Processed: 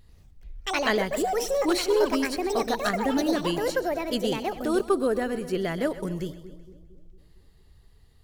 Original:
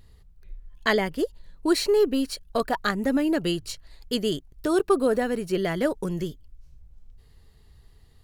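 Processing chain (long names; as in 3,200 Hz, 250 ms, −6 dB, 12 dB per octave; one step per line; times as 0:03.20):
on a send: echo with a time of its own for lows and highs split 500 Hz, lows 228 ms, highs 129 ms, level −14.5 dB
on the sum: delay with pitch and tempo change per echo 92 ms, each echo +5 semitones, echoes 2
level −2.5 dB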